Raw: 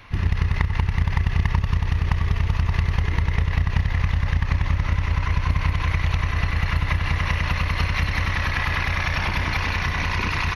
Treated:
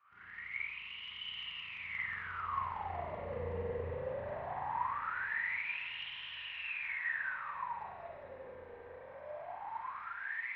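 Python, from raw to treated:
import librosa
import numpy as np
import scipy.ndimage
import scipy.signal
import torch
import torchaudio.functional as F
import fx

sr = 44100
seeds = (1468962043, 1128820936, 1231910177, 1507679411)

y = fx.doppler_pass(x, sr, speed_mps=29, closest_m=29.0, pass_at_s=3.56)
y = fx.rev_spring(y, sr, rt60_s=2.4, pass_ms=(35, 45), chirp_ms=30, drr_db=-10.0)
y = fx.wah_lfo(y, sr, hz=0.2, low_hz=480.0, high_hz=3000.0, q=13.0)
y = F.gain(torch.from_numpy(y), 1.5).numpy()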